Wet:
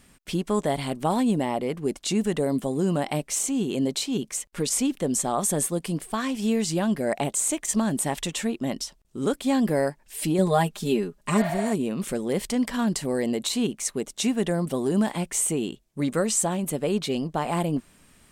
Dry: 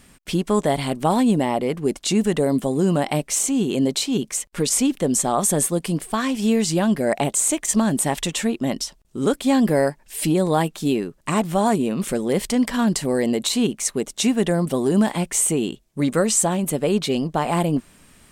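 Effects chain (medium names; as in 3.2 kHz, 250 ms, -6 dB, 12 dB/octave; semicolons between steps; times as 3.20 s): 11.40–11.69 s: spectral replace 560–5100 Hz after; 10.38–11.50 s: comb 4.9 ms, depth 90%; trim -5 dB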